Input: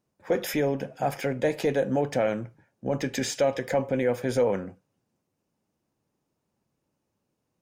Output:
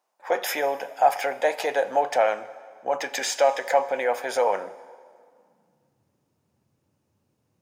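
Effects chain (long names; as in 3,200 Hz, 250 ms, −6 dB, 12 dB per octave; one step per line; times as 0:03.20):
high-pass filter sweep 790 Hz → 92 Hz, 0:04.51–0:06.10
dense smooth reverb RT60 2.1 s, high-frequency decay 0.8×, DRR 15.5 dB
level +4 dB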